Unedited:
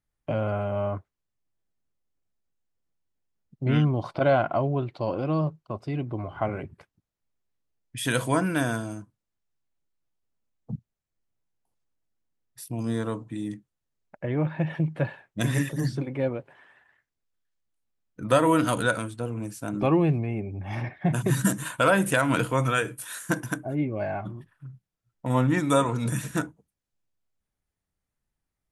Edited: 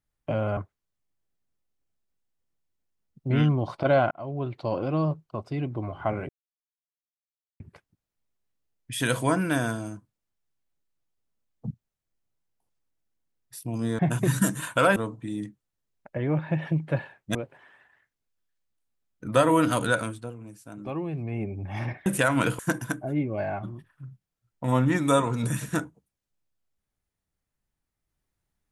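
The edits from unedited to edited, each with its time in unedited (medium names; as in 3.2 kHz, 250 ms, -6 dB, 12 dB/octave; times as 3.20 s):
0.57–0.93 s: delete
4.47–4.93 s: fade in
6.65 s: insert silence 1.31 s
15.43–16.31 s: delete
19.04–20.37 s: dip -10.5 dB, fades 0.28 s
21.02–21.99 s: move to 13.04 s
22.52–23.21 s: delete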